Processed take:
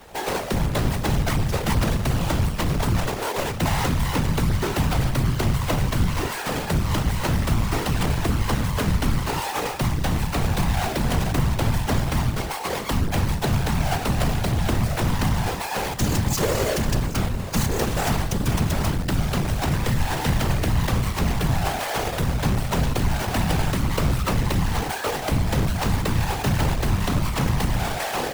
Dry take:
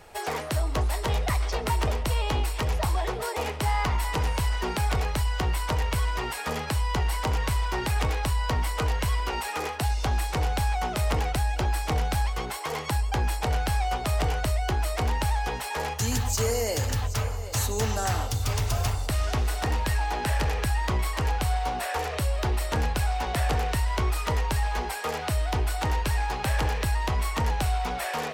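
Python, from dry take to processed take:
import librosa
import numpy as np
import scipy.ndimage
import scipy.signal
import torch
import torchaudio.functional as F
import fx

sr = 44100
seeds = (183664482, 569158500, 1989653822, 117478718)

y = fx.halfwave_hold(x, sr)
y = fx.whisperise(y, sr, seeds[0])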